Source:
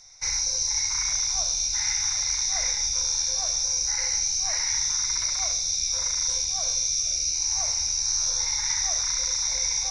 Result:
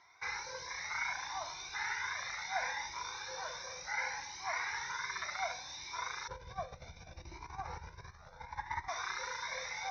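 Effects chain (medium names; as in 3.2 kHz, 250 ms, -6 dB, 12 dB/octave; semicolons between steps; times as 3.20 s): 6.28–8.88 s: tilt EQ -4.5 dB/octave; compressor with a negative ratio -25 dBFS, ratio -1; cabinet simulation 230–2900 Hz, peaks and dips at 230 Hz -7 dB, 400 Hz +4 dB, 570 Hz -5 dB, 980 Hz +5 dB, 1.6 kHz +5 dB, 2.6 kHz -7 dB; Shepard-style flanger rising 0.68 Hz; trim +3.5 dB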